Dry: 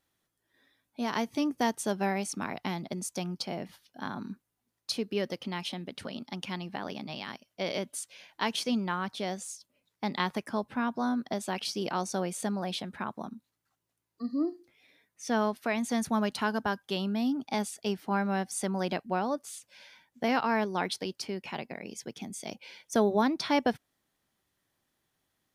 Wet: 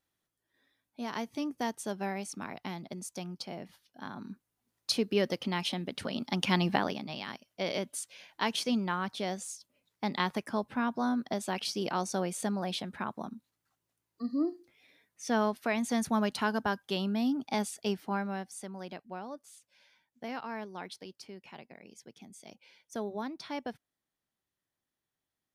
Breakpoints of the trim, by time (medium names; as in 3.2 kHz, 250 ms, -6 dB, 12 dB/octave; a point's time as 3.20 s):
4.13 s -5.5 dB
4.92 s +3 dB
6.06 s +3 dB
6.71 s +11.5 dB
7.01 s -0.5 dB
17.93 s -0.5 dB
18.68 s -11.5 dB